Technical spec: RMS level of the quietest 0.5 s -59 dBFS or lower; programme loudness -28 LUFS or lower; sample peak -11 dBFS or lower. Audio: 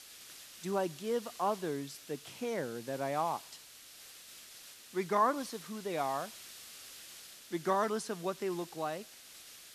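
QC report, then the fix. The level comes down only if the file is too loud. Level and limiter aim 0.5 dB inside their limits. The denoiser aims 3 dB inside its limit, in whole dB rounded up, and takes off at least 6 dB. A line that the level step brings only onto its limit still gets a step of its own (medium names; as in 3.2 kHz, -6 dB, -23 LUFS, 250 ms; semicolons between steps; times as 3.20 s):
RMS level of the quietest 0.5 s -54 dBFS: fail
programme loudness -36.0 LUFS: pass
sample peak -16.5 dBFS: pass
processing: noise reduction 8 dB, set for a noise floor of -54 dBFS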